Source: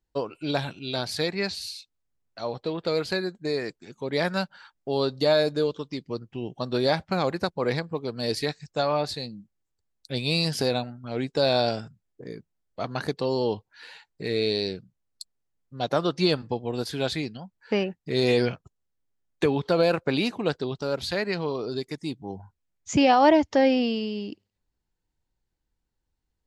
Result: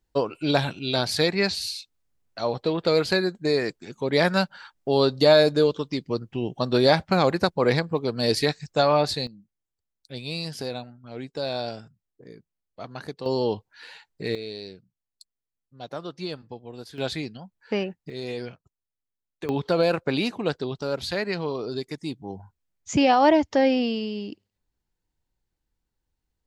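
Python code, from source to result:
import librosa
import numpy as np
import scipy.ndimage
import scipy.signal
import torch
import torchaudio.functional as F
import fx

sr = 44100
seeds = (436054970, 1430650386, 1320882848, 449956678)

y = fx.gain(x, sr, db=fx.steps((0.0, 5.0), (9.27, -7.0), (13.26, 1.0), (14.35, -10.5), (16.98, -1.5), (18.1, -11.0), (19.49, 0.0)))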